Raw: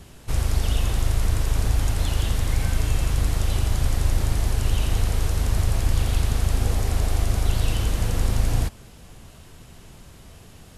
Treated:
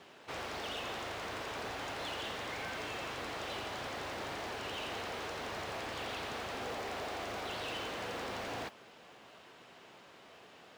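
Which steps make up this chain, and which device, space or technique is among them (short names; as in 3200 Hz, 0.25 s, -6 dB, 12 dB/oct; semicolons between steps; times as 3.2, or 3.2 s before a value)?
carbon microphone (BPF 440–3400 Hz; soft clip -32 dBFS, distortion -17 dB; modulation noise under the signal 24 dB); gain -1.5 dB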